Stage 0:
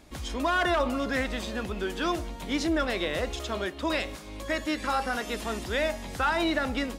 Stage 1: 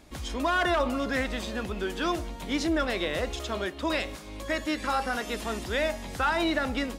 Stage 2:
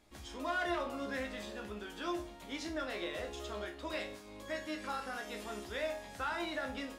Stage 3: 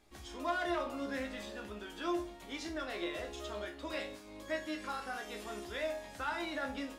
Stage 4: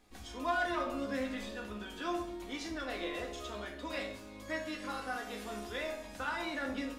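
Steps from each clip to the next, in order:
no audible change
peaking EQ 110 Hz -4 dB 2.7 oct; chord resonator C#2 major, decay 0.34 s; trim +1 dB
flange 0.38 Hz, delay 2.5 ms, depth 1.1 ms, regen +63%; trim +4 dB
simulated room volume 2200 m³, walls furnished, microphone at 1.9 m

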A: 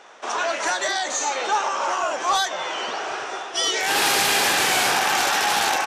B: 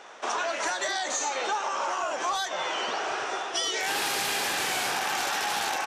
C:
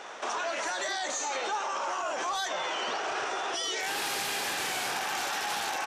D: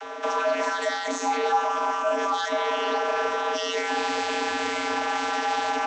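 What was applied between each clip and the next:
compression, threshold -26 dBFS, peak gain reduction 9.5 dB
peak limiter -28 dBFS, peak gain reduction 10.5 dB; trim +4 dB
vocoder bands 32, square 90.4 Hz; trim +7.5 dB

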